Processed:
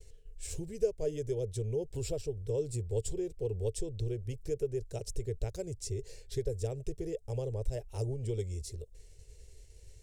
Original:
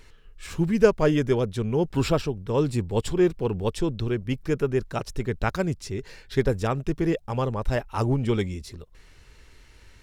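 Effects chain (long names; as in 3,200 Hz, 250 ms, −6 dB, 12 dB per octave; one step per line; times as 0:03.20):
downward compressor 3 to 1, threshold −29 dBFS, peak gain reduction 13.5 dB
drawn EQ curve 110 Hz 0 dB, 190 Hz −16 dB, 270 Hz −17 dB, 440 Hz +1 dB, 630 Hz −7 dB, 1,200 Hz −28 dB, 2,100 Hz −15 dB, 3,800 Hz −10 dB, 8,100 Hz +5 dB, 12,000 Hz −3 dB
downward expander −49 dBFS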